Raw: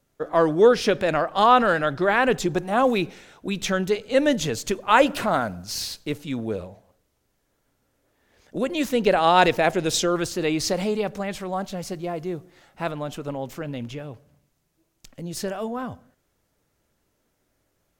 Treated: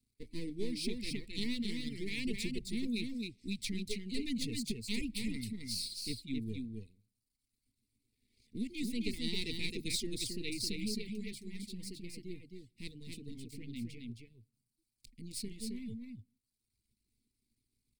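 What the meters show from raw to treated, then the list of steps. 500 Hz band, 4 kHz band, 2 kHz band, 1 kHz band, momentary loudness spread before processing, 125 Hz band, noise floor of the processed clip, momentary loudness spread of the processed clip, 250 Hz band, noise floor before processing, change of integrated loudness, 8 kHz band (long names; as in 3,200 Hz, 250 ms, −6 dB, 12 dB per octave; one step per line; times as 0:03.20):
−25.5 dB, −9.0 dB, −19.0 dB, below −40 dB, 15 LU, −12.5 dB, below −85 dBFS, 12 LU, −11.5 dB, −72 dBFS, −17.0 dB, −11.0 dB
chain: gain on one half-wave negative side −12 dB
inverse Chebyshev band-stop filter 540–1,600 Hz, stop band 40 dB
reverb reduction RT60 1.2 s
EQ curve with evenly spaced ripples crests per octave 0.94, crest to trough 11 dB
downward compressor, threshold −25 dBFS, peak gain reduction 6.5 dB
on a send: single-tap delay 266 ms −4 dB
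on the sum: level −6.5 dB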